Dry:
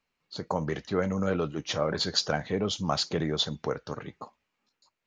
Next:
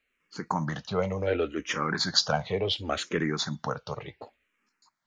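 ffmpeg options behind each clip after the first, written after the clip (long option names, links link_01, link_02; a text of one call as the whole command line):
ffmpeg -i in.wav -filter_complex "[0:a]equalizer=frequency=1900:width=0.8:gain=6,asplit=2[link_01][link_02];[link_02]afreqshift=-0.69[link_03];[link_01][link_03]amix=inputs=2:normalize=1,volume=2.5dB" out.wav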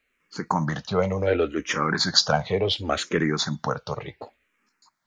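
ffmpeg -i in.wav -af "equalizer=frequency=2900:width=3.3:gain=-3,volume=5dB" out.wav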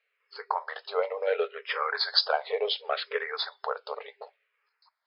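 ffmpeg -i in.wav -af "afftfilt=real='re*between(b*sr/4096,400,5200)':imag='im*between(b*sr/4096,400,5200)':win_size=4096:overlap=0.75,volume=-4dB" out.wav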